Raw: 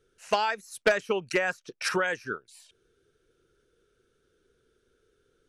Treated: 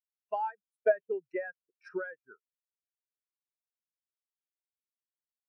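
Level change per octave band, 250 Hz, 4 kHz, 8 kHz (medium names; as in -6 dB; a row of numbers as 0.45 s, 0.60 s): -9.0 dB, under -30 dB, under -35 dB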